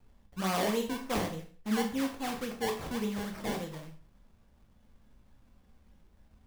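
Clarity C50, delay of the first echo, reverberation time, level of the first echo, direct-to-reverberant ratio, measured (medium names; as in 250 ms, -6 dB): 9.0 dB, no echo, 0.45 s, no echo, 2.5 dB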